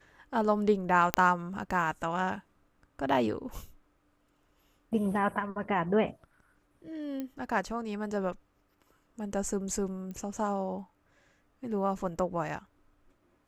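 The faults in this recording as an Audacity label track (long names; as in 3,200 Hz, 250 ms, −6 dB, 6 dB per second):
1.140000	1.140000	click −7 dBFS
7.200000	7.200000	click −24 dBFS
10.110000	10.110000	click −30 dBFS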